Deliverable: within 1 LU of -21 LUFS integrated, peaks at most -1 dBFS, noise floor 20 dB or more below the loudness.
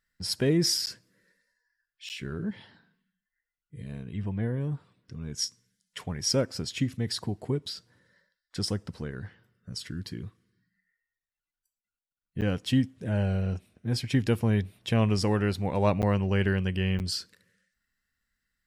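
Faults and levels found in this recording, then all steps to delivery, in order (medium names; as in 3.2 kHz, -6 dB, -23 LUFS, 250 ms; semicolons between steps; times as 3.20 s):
dropouts 5; longest dropout 9.1 ms; loudness -29.0 LUFS; peak level -11.5 dBFS; loudness target -21.0 LUFS
-> interpolate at 0.86/2.09/12.41/16.02/16.99 s, 9.1 ms; trim +8 dB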